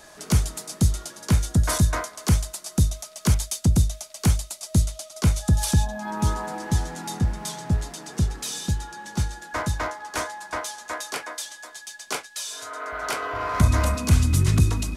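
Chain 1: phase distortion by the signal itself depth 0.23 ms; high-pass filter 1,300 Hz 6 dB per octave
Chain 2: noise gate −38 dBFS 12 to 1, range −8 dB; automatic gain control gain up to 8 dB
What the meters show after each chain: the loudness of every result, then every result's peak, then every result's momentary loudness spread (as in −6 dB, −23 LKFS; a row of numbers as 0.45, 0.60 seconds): −34.0, −19.5 LKFS; −12.0, −2.0 dBFS; 7, 9 LU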